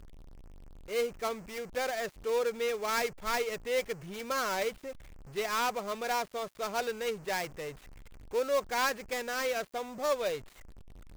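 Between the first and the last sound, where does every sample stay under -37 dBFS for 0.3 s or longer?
4.91–5.36 s
7.71–8.33 s

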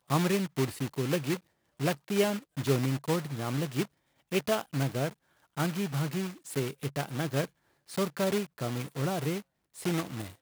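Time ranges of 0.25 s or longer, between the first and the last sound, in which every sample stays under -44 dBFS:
1.39–1.80 s
3.85–4.32 s
5.13–5.57 s
7.46–7.89 s
9.41–9.76 s

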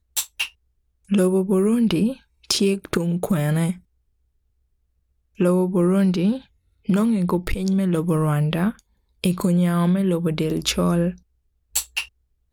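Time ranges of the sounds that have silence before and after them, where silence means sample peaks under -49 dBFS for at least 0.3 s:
1.05–3.80 s
5.36–6.46 s
6.85–8.80 s
9.24–11.21 s
11.74–12.08 s

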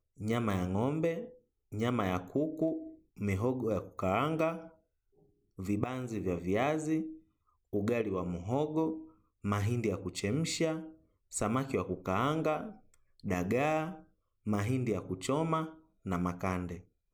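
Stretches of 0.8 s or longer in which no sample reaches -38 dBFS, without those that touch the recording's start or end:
4.58–5.59 s

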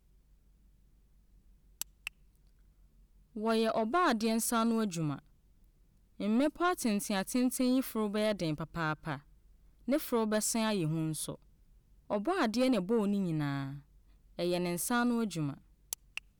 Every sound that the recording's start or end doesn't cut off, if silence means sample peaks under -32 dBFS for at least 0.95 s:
1.81–2.07 s
3.37–5.14 s

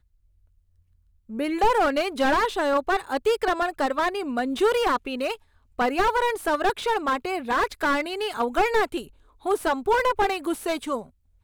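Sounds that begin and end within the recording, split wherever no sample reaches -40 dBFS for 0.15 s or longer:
1.29–5.36 s
5.78–9.07 s
9.45–11.06 s

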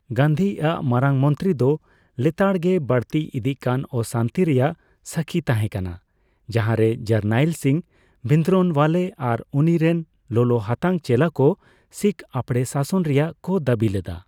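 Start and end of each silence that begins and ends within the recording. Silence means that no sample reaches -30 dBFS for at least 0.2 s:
1.76–2.18 s
4.73–5.07 s
5.95–6.49 s
7.80–8.25 s
10.02–10.31 s
11.54–11.96 s

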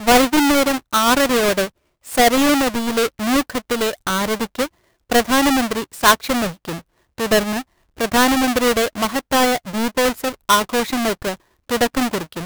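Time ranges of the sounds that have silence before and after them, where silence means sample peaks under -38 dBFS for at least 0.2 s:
2.06–4.67 s
5.10–6.81 s
7.18–7.62 s
7.97–11.35 s

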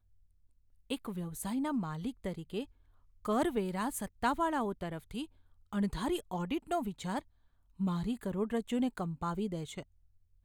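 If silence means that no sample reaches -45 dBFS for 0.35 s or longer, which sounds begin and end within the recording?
0.90–2.64 s
3.25–5.25 s
5.73–7.20 s
7.80–9.83 s

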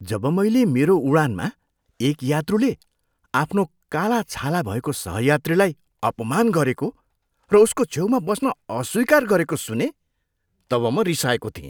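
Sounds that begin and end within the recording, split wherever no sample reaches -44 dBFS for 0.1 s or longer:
2.00–2.83 s
3.34–3.66 s
3.92–5.73 s
6.03–6.91 s
7.50–8.53 s
8.70–9.91 s

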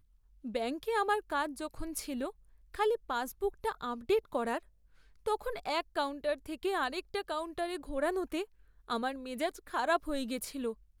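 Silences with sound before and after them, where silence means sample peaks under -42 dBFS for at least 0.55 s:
4.59–5.26 s

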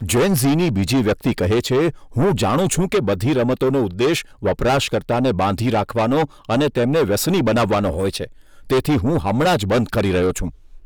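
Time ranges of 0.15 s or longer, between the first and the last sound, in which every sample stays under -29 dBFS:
1.91–2.15 s
4.22–4.43 s
6.25–6.49 s
8.26–8.70 s

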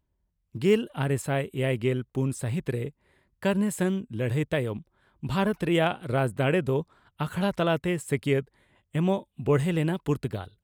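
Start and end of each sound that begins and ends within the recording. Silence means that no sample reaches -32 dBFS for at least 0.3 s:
0.55–2.88 s
3.43–4.78 s
5.23–6.82 s
7.20–8.40 s

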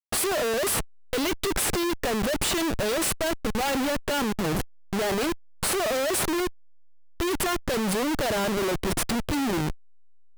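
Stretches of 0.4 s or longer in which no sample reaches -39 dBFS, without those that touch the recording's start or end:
6.50–7.20 s

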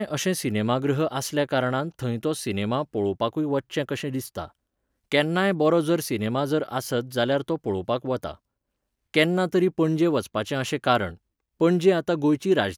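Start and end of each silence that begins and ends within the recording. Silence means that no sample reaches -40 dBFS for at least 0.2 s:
4.47–5.12 s
8.35–9.14 s
11.15–11.60 s

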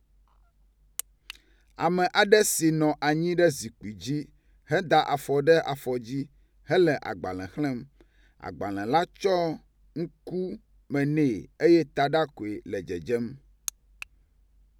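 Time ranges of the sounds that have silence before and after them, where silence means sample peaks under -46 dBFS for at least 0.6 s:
0.99–14.03 s

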